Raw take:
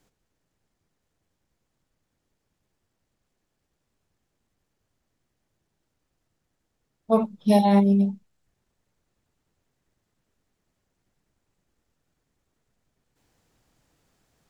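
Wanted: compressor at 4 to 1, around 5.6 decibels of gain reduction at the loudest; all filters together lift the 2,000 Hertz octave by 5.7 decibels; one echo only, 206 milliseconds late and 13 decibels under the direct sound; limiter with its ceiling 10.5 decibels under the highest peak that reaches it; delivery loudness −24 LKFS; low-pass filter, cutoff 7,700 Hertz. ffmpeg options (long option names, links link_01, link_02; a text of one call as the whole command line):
ffmpeg -i in.wav -af "lowpass=7700,equalizer=frequency=2000:width_type=o:gain=6.5,acompressor=threshold=-20dB:ratio=4,alimiter=limit=-22dB:level=0:latency=1,aecho=1:1:206:0.224,volume=6.5dB" out.wav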